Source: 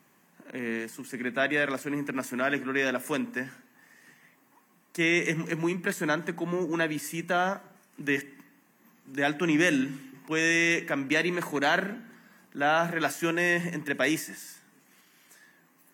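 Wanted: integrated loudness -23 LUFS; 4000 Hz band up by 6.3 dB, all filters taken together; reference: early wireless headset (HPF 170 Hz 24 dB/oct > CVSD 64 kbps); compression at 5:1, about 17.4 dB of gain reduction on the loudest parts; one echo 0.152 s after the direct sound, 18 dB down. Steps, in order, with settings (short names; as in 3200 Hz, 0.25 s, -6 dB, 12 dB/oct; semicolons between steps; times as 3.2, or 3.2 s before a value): bell 4000 Hz +8.5 dB; compressor 5:1, threshold -39 dBFS; HPF 170 Hz 24 dB/oct; echo 0.152 s -18 dB; CVSD 64 kbps; gain +18 dB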